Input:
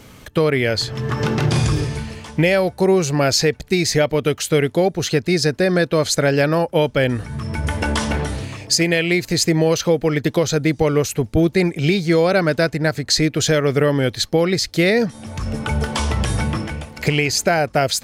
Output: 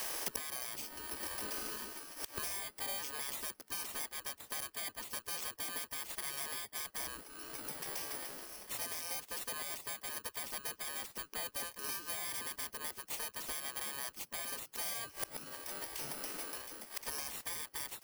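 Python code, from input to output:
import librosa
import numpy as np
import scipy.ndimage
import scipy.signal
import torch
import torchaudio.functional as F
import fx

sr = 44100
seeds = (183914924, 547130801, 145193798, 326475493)

y = fx.bit_reversed(x, sr, seeds[0], block=32)
y = fx.notch(y, sr, hz=470.0, q=12.0)
y = fx.spec_gate(y, sr, threshold_db=-15, keep='weak')
y = np.clip(10.0 ** (17.5 / 20.0) * y, -1.0, 1.0) / 10.0 ** (17.5 / 20.0)
y = fx.gate_flip(y, sr, shuts_db=-28.0, range_db=-24)
y = fx.band_squash(y, sr, depth_pct=40)
y = y * 10.0 ** (8.0 / 20.0)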